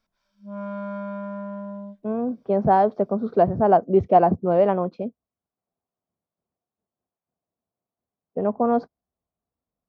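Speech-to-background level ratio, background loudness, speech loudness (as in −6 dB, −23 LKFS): 13.0 dB, −34.0 LKFS, −21.0 LKFS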